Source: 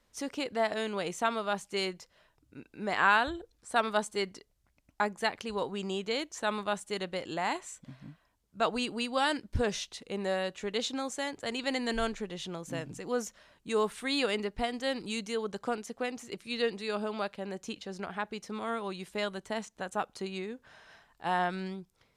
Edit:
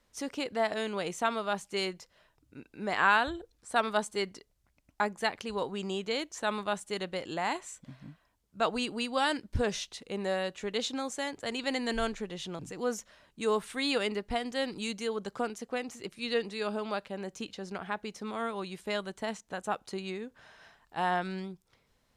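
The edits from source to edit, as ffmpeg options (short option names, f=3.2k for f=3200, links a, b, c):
-filter_complex "[0:a]asplit=2[a][b];[a]atrim=end=12.592[c];[b]atrim=start=12.868[d];[c][d]acrossfade=d=0.004:c1=hsin:c2=hsin"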